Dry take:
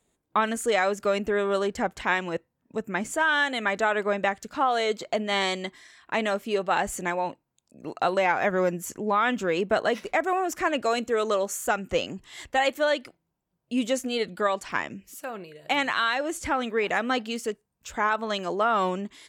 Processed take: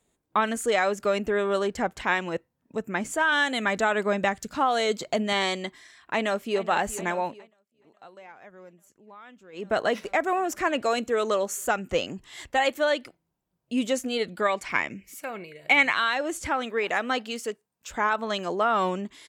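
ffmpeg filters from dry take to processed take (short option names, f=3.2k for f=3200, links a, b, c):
-filter_complex "[0:a]asettb=1/sr,asplit=3[a][b][c];[a]atrim=end=3.324[d];[b]atrim=start=3.32:end=5.33,asetpts=PTS-STARTPTS,afade=t=in:d=0.004:c=qsin,afade=t=out:st=2.006:d=0.004:c=qsin,bass=f=250:g=6,treble=f=4k:g=5[e];[c]atrim=start=5.326[f];[d][e]acrossfade=d=0.004:c1=hsin:c2=qsin[g];[g][f]acrossfade=d=0.004:c1=qsin:c2=hsin,asplit=2[h][i];[i]afade=t=in:st=6.13:d=0.01,afade=t=out:st=6.69:d=0.01,aecho=0:1:420|840|1260|1680|2100|2520|2940|3360|3780|4200|4620|5040:0.188365|0.150692|0.120554|0.0964428|0.0771543|0.0617234|0.0493787|0.039503|0.0316024|0.0252819|0.0202255|0.0161804[j];[h][j]amix=inputs=2:normalize=0,asettb=1/sr,asplit=3[k][l][m];[k]atrim=end=14.424[n];[l]atrim=start=14.42:end=15.95,asetpts=PTS-STARTPTS,afade=t=in:d=0.004:c=qsin,afade=t=out:st=1.526:d=0.004:c=qsin,equalizer=f=2.2k:w=6.4:g=13.5[o];[m]atrim=start=15.946[p];[n][o]acrossfade=d=0.004:c1=hsin:c2=qsin[q];[q][p]acrossfade=d=0.004:c1=qsin:c2=hsin,asettb=1/sr,asplit=3[r][s][t];[r]atrim=end=16.474[u];[s]atrim=start=16.47:end=17.91,asetpts=PTS-STARTPTS,afade=t=in:d=0.004:c=qsin,afade=t=out:st=1.436:d=0.004:c=qsin,highpass=f=290:p=1[v];[t]atrim=start=17.906[w];[u][v]acrossfade=d=0.004:c1=hsin:c2=qsin[x];[x][w]acrossfade=d=0.004:c1=qsin:c2=hsin,asplit=3[y][z][aa];[y]atrim=end=7.51,asetpts=PTS-STARTPTS,afade=t=out:st=7.24:d=0.27:silence=0.0630957[ab];[z]atrim=start=7.51:end=9.52,asetpts=PTS-STARTPTS,volume=-24dB[ac];[aa]atrim=start=9.52,asetpts=PTS-STARTPTS,afade=t=in:d=0.27:silence=0.0630957[ad];[ab][ac][ad]concat=n=3:v=0:a=1"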